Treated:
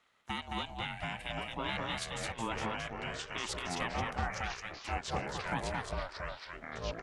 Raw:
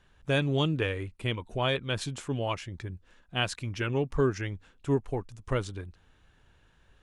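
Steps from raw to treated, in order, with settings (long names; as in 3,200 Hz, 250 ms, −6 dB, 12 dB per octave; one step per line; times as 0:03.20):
high-pass filter 490 Hz 24 dB per octave
ring modulation 340 Hz
brickwall limiter −25 dBFS, peak gain reduction 11 dB
speech leveller 2 s
single-tap delay 218 ms −3.5 dB
delay with pitch and tempo change per echo 651 ms, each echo −4 semitones, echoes 3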